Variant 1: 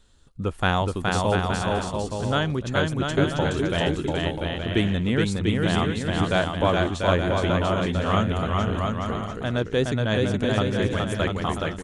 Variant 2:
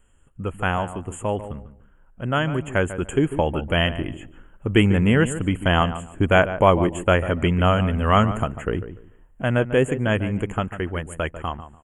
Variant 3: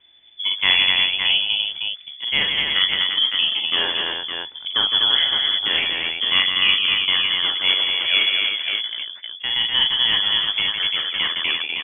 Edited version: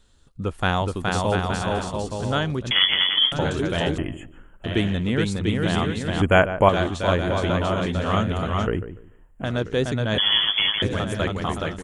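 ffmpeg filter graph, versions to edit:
-filter_complex "[2:a]asplit=2[a][b];[1:a]asplit=3[c][d][e];[0:a]asplit=6[f][g][h][i][j][k];[f]atrim=end=2.712[l];[a]atrim=start=2.708:end=3.322[m];[g]atrim=start=3.318:end=3.982[n];[c]atrim=start=3.978:end=4.642[o];[h]atrim=start=4.638:end=6.222[p];[d]atrim=start=6.218:end=6.692[q];[i]atrim=start=6.688:end=8.672[r];[e]atrim=start=8.668:end=9.442[s];[j]atrim=start=9.438:end=10.182[t];[b]atrim=start=10.178:end=10.822[u];[k]atrim=start=10.818[v];[l][m]acrossfade=d=0.004:c1=hsin:c2=hsin[w];[w][n]acrossfade=d=0.004:c1=hsin:c2=hsin[x];[x][o]acrossfade=d=0.004:c1=hsin:c2=hsin[y];[y][p]acrossfade=d=0.004:c1=hsin:c2=hsin[z];[z][q]acrossfade=d=0.004:c1=hsin:c2=hsin[aa];[aa][r]acrossfade=d=0.004:c1=hsin:c2=hsin[ab];[ab][s]acrossfade=d=0.004:c1=hsin:c2=hsin[ac];[ac][t]acrossfade=d=0.004:c1=hsin:c2=hsin[ad];[ad][u]acrossfade=d=0.004:c1=hsin:c2=hsin[ae];[ae][v]acrossfade=d=0.004:c1=hsin:c2=hsin"

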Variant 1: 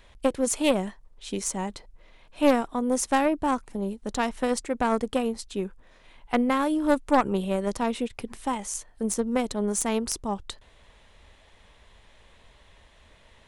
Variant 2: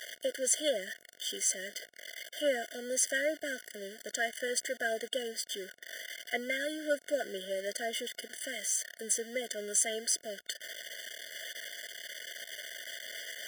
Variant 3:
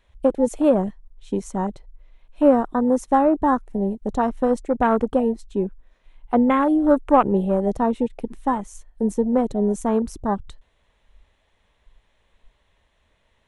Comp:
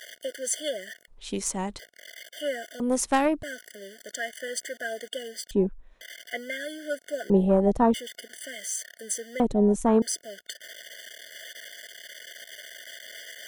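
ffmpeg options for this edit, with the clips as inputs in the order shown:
-filter_complex "[0:a]asplit=2[a][b];[2:a]asplit=3[c][d][e];[1:a]asplit=6[f][g][h][i][j][k];[f]atrim=end=1.082[l];[a]atrim=start=1.078:end=1.792[m];[g]atrim=start=1.788:end=2.802[n];[b]atrim=start=2.798:end=3.432[o];[h]atrim=start=3.428:end=5.512[p];[c]atrim=start=5.508:end=6.012[q];[i]atrim=start=6.008:end=7.302[r];[d]atrim=start=7.298:end=7.942[s];[j]atrim=start=7.938:end=9.402[t];[e]atrim=start=9.398:end=10.022[u];[k]atrim=start=10.018[v];[l][m]acrossfade=d=0.004:c1=hsin:c2=hsin[w];[w][n]acrossfade=d=0.004:c1=hsin:c2=hsin[x];[x][o]acrossfade=d=0.004:c1=hsin:c2=hsin[y];[y][p]acrossfade=d=0.004:c1=hsin:c2=hsin[z];[z][q]acrossfade=d=0.004:c1=hsin:c2=hsin[aa];[aa][r]acrossfade=d=0.004:c1=hsin:c2=hsin[ab];[ab][s]acrossfade=d=0.004:c1=hsin:c2=hsin[ac];[ac][t]acrossfade=d=0.004:c1=hsin:c2=hsin[ad];[ad][u]acrossfade=d=0.004:c1=hsin:c2=hsin[ae];[ae][v]acrossfade=d=0.004:c1=hsin:c2=hsin"

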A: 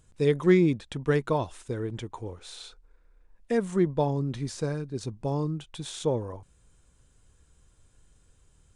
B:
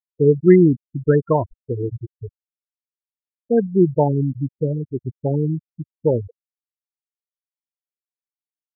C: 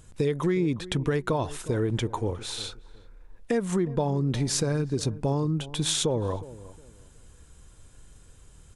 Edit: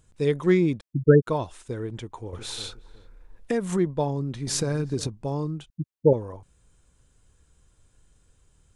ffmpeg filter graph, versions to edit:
-filter_complex "[1:a]asplit=2[a][b];[2:a]asplit=2[c][d];[0:a]asplit=5[e][f][g][h][i];[e]atrim=end=0.812[j];[a]atrim=start=0.808:end=1.272[k];[f]atrim=start=1.268:end=2.332[l];[c]atrim=start=2.328:end=3.782[m];[g]atrim=start=3.778:end=4.472[n];[d]atrim=start=4.468:end=5.072[o];[h]atrim=start=5.068:end=5.702[p];[b]atrim=start=5.698:end=6.132[q];[i]atrim=start=6.128[r];[j][k]acrossfade=d=0.004:c1=hsin:c2=hsin[s];[s][l]acrossfade=d=0.004:c1=hsin:c2=hsin[t];[t][m]acrossfade=d=0.004:c1=hsin:c2=hsin[u];[u][n]acrossfade=d=0.004:c1=hsin:c2=hsin[v];[v][o]acrossfade=d=0.004:c1=hsin:c2=hsin[w];[w][p]acrossfade=d=0.004:c1=hsin:c2=hsin[x];[x][q]acrossfade=d=0.004:c1=hsin:c2=hsin[y];[y][r]acrossfade=d=0.004:c1=hsin:c2=hsin"

